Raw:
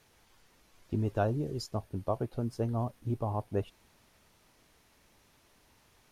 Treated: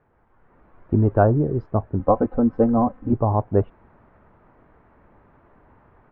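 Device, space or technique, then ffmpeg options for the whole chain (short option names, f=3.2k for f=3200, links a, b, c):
action camera in a waterproof case: -filter_complex "[0:a]asettb=1/sr,asplit=3[a][b][c];[a]atrim=end=1.994[d];[b]atrim=start=1.99:end=3.13,asetpts=PTS-STARTPTS,afade=t=in:d=0.004:c=qsin,afade=t=out:st=1.136:d=0.004:c=qsin,aecho=1:1:3.9:0.93,atrim=end_sample=50274[e];[c]atrim=start=3.126[f];[d][e]acrossfade=d=0.004:c1=hsin:c2=qsin[g];[g][f]acrossfade=d=0.004:c1=qsin:c2=hsin,lowpass=f=1.5k:w=0.5412,lowpass=f=1.5k:w=1.3066,dynaudnorm=f=320:g=3:m=9dB,volume=4dB" -ar 48000 -c:a aac -b:a 96k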